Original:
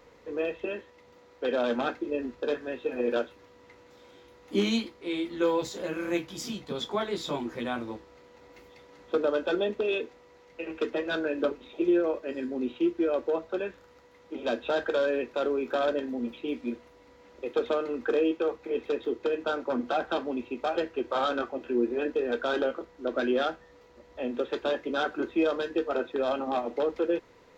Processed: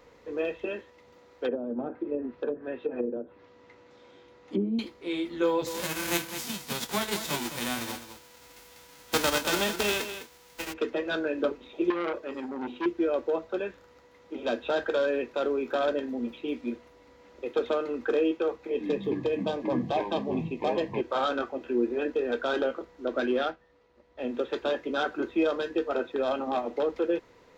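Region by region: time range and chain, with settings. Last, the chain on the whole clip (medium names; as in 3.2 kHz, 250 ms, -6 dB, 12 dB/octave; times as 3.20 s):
1.46–4.79 s: high-pass 85 Hz + low-pass that closes with the level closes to 340 Hz, closed at -23.5 dBFS + distance through air 73 m
5.66–10.72 s: formants flattened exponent 0.3 + delay 207 ms -10.5 dB
11.90–12.86 s: hum notches 50/100/150/200/250/300/350/400/450/500 Hz + transformer saturation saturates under 1.4 kHz
18.69–21.01 s: ever faster or slower copies 111 ms, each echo -7 st, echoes 3, each echo -6 dB + Butterworth band-stop 1.4 kHz, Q 3.1
23.26–24.25 s: companding laws mixed up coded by A + low-pass 4.7 kHz
whole clip: none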